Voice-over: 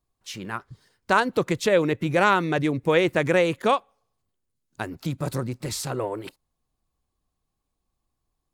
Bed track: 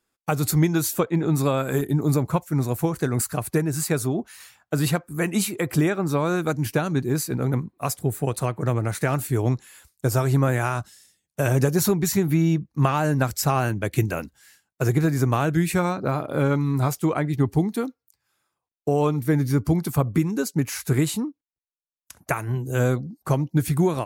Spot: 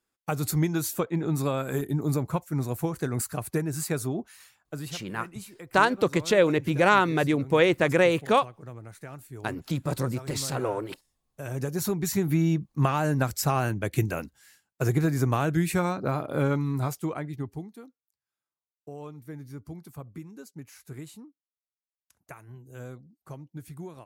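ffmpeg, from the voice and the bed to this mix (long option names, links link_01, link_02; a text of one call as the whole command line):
ffmpeg -i stem1.wav -i stem2.wav -filter_complex "[0:a]adelay=4650,volume=-0.5dB[link_01];[1:a]volume=10dB,afade=type=out:start_time=4.22:duration=0.76:silence=0.211349,afade=type=in:start_time=11.31:duration=1.01:silence=0.16788,afade=type=out:start_time=16.42:duration=1.29:silence=0.149624[link_02];[link_01][link_02]amix=inputs=2:normalize=0" out.wav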